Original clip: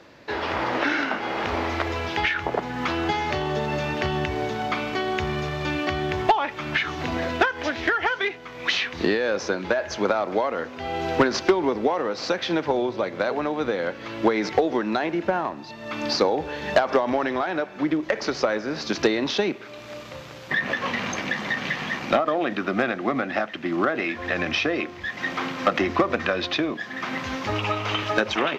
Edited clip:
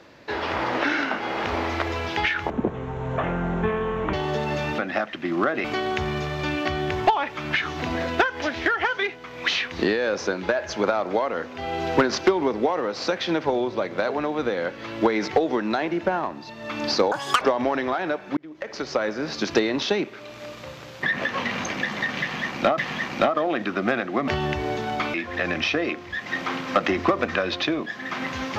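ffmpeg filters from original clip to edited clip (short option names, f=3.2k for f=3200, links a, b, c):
-filter_complex "[0:a]asplit=11[a][b][c][d][e][f][g][h][i][j][k];[a]atrim=end=2.504[l];[b]atrim=start=2.5:end=3.35,asetpts=PTS-STARTPTS,asetrate=22932,aresample=44100[m];[c]atrim=start=3.346:end=4.002[n];[d]atrim=start=23.188:end=24.052[o];[e]atrim=start=4.858:end=16.334[p];[f]atrim=start=16.33:end=16.89,asetpts=PTS-STARTPTS,asetrate=83790,aresample=44100[q];[g]atrim=start=16.886:end=17.85,asetpts=PTS-STARTPTS,afade=t=out:st=0.96:d=0.004:c=hsin[r];[h]atrim=start=17.85:end=22.262,asetpts=PTS-STARTPTS,afade=t=in:d=0.74[s];[i]atrim=start=21.688:end=23.192[t];[j]atrim=start=3.998:end=4.862[u];[k]atrim=start=24.048[v];[l][m]acrossfade=d=0.004:c1=hsin:c2=hsin[w];[w][n]acrossfade=d=0.004:c1=hsin:c2=hsin[x];[x][o]acrossfade=d=0.004:c1=hsin:c2=hsin[y];[y][p]acrossfade=d=0.004:c1=hsin:c2=hsin[z];[z][q]acrossfade=d=0.004:c1=hsin:c2=hsin[aa];[r][s]concat=n=2:v=0:a=1[ab];[aa][ab]acrossfade=d=0.004:c1=hsin:c2=hsin[ac];[ac][t]acrossfade=d=0.004:c1=hsin:c2=hsin[ad];[ad][u]acrossfade=d=0.004:c1=hsin:c2=hsin[ae];[ae][v]acrossfade=d=0.004:c1=hsin:c2=hsin"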